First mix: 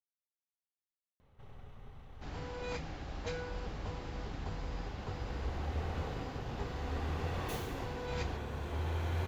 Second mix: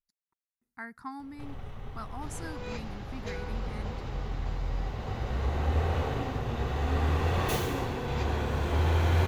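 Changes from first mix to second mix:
speech: unmuted; first sound +10.5 dB

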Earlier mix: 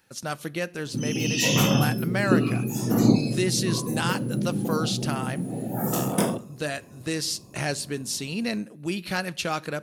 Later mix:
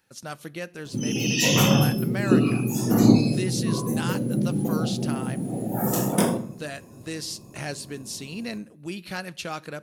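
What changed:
speech -5.0 dB; background: send +11.5 dB

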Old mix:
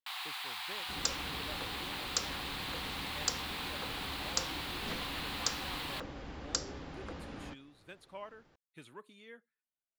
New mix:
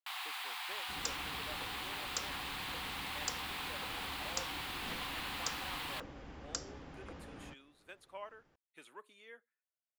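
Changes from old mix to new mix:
speech: add high-pass 450 Hz 12 dB/octave; second sound -5.0 dB; master: add peaking EQ 4.1 kHz -4.5 dB 0.51 oct

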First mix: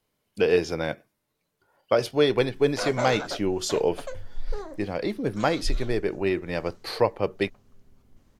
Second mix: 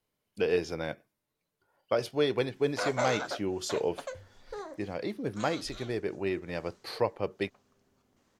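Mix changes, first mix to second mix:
speech -6.5 dB; background: add high-pass 500 Hz 6 dB/octave

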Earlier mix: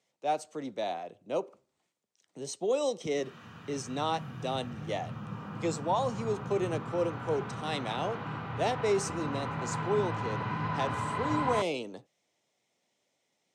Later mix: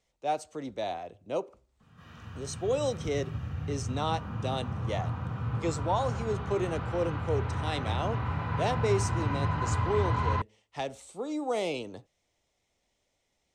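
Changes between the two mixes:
background: entry -1.20 s; master: remove high-pass 140 Hz 24 dB/octave

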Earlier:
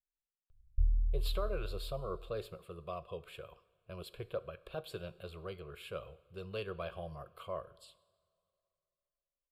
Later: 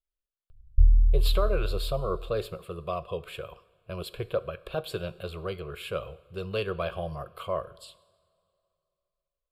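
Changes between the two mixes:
speech +10.0 dB; background +11.5 dB

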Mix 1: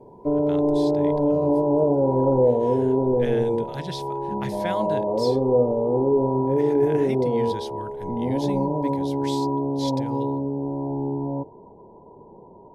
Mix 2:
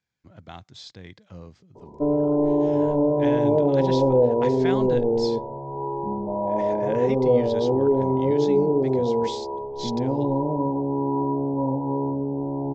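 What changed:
speech: add steep low-pass 7.5 kHz 72 dB/octave; background: entry +1.75 s

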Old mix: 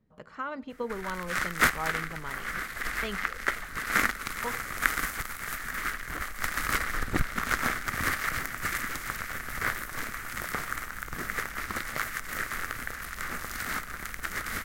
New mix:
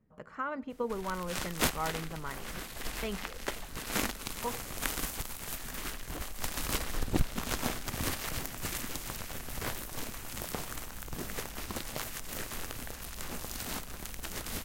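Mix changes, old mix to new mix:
speech: add peaking EQ 4 kHz -8 dB 1 oct; background: add high-order bell 1.6 kHz -13.5 dB 1.1 oct

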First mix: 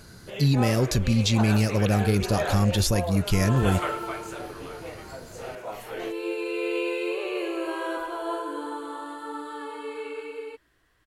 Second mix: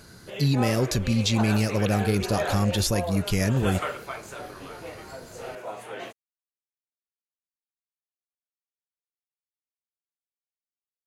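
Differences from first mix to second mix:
second sound: muted; master: add bass shelf 84 Hz -6.5 dB

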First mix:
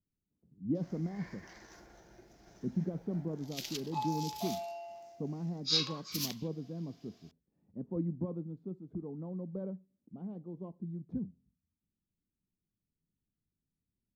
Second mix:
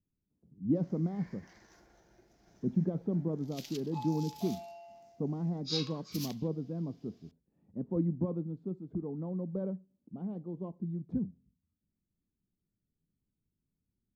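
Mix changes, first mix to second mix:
speech +4.0 dB; background -6.0 dB

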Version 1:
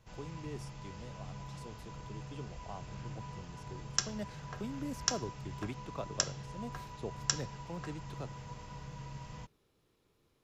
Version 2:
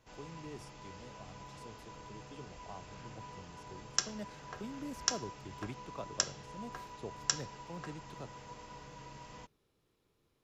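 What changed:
speech -3.0 dB; background: add resonant low shelf 210 Hz -8 dB, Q 1.5

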